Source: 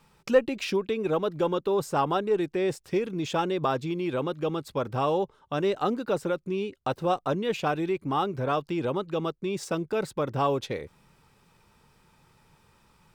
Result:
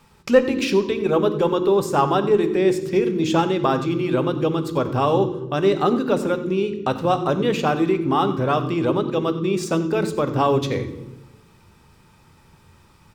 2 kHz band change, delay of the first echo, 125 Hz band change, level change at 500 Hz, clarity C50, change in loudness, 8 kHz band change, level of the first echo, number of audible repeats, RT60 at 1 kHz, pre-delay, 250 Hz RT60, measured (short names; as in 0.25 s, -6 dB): +6.5 dB, 91 ms, +9.0 dB, +7.5 dB, 11.0 dB, +7.5 dB, +7.0 dB, -15.5 dB, 1, 1.0 s, 3 ms, 1.3 s